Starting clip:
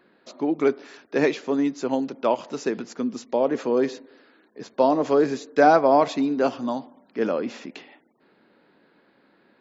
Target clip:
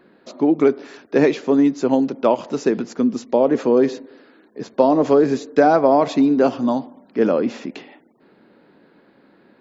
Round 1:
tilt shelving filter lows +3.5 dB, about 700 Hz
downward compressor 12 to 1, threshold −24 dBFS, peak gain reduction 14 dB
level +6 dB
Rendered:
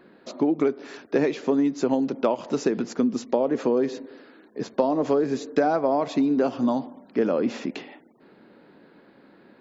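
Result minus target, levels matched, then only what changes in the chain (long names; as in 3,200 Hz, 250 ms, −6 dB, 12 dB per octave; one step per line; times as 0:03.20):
downward compressor: peak gain reduction +8 dB
change: downward compressor 12 to 1, threshold −15 dBFS, peak gain reduction 6 dB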